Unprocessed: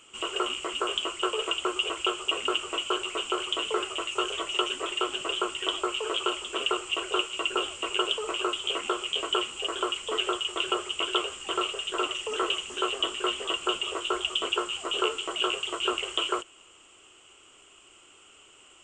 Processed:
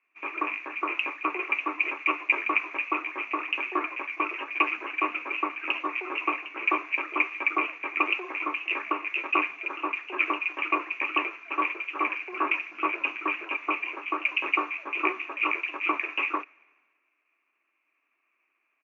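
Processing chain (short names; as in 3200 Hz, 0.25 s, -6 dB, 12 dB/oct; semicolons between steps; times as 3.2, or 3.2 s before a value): pitch shift -3 st; speaker cabinet 500–2600 Hz, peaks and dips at 510 Hz -8 dB, 900 Hz -8 dB, 1400 Hz +5 dB; three-band expander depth 70%; gain +4 dB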